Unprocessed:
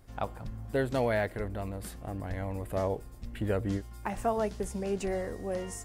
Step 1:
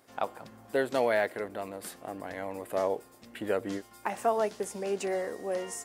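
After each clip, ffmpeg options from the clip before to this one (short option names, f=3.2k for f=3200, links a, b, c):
-af "highpass=330,volume=3dB"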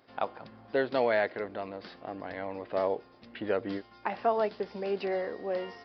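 -af "aresample=11025,aresample=44100"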